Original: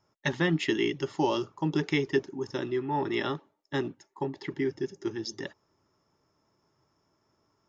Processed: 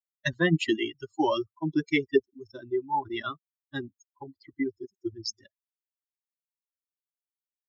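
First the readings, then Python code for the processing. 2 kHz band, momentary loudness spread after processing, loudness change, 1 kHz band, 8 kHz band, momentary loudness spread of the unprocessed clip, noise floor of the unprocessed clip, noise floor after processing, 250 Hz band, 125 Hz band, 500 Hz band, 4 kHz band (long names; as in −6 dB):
+1.0 dB, 20 LU, +1.0 dB, +2.0 dB, can't be measured, 9 LU, −74 dBFS, below −85 dBFS, +0.5 dB, −0.5 dB, 0.0 dB, +0.5 dB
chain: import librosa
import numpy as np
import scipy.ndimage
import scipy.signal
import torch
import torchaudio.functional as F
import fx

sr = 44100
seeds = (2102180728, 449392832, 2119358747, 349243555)

y = fx.bin_expand(x, sr, power=3.0)
y = y * 10.0 ** (7.0 / 20.0)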